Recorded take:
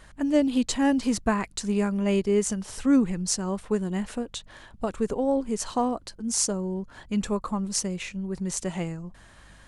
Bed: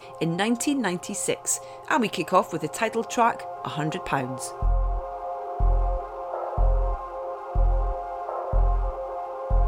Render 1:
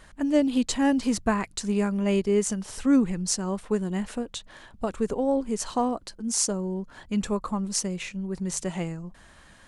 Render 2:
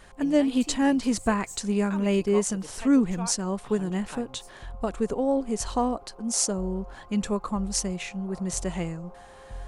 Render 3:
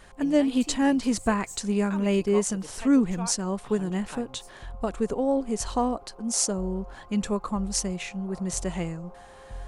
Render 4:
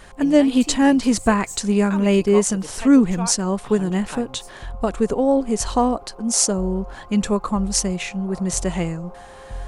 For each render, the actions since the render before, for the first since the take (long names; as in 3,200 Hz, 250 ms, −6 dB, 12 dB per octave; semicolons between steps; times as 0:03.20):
hum removal 50 Hz, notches 3
mix in bed −17 dB
no processing that can be heard
level +7 dB